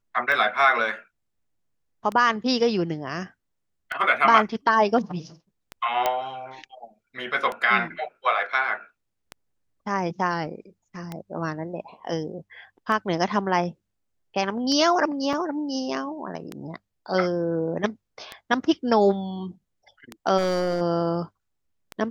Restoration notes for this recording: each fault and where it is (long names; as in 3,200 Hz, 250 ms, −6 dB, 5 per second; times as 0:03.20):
scratch tick 33 1/3 rpm −17 dBFS
0:06.06: click −8 dBFS
0:15.33: drop-out 3.1 ms
0:20.37–0:20.82: clipping −19.5 dBFS